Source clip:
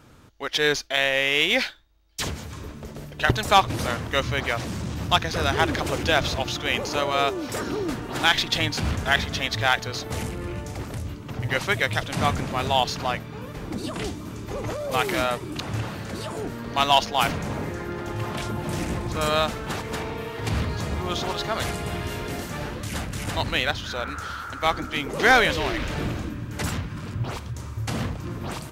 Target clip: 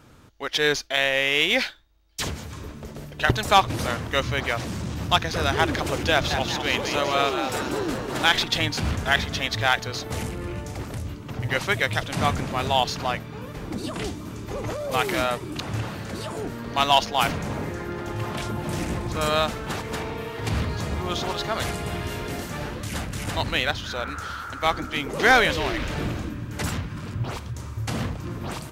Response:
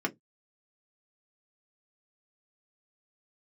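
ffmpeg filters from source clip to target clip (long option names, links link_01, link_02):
-filter_complex "[0:a]asettb=1/sr,asplit=3[link_01][link_02][link_03];[link_01]atrim=end=6.114[link_04];[link_02]atrim=start=6.11:end=8.44,asetpts=PTS-STARTPTS,afade=type=in:duration=0.004:curve=qsin,afade=type=out:start_time=2.326:duration=0.004:curve=qsin,asplit=8[link_05][link_06][link_07][link_08][link_09][link_10][link_11][link_12];[link_06]adelay=193,afreqshift=100,volume=-7.5dB[link_13];[link_07]adelay=386,afreqshift=200,volume=-12.5dB[link_14];[link_08]adelay=579,afreqshift=300,volume=-17.6dB[link_15];[link_09]adelay=772,afreqshift=400,volume=-22.6dB[link_16];[link_10]adelay=965,afreqshift=500,volume=-27.6dB[link_17];[link_11]adelay=1158,afreqshift=600,volume=-32.7dB[link_18];[link_12]adelay=1351,afreqshift=700,volume=-37.7dB[link_19];[link_05][link_13][link_14][link_15][link_16][link_17][link_18][link_19]amix=inputs=8:normalize=0,atrim=end_sample=102753[link_20];[link_03]atrim=start=8.436[link_21];[link_04][link_20]acrossfade=duration=0.004:curve1=hsin:curve2=qsin[link_22];[link_22][link_21]acrossfade=duration=0.004:curve1=qsin:curve2=hsin"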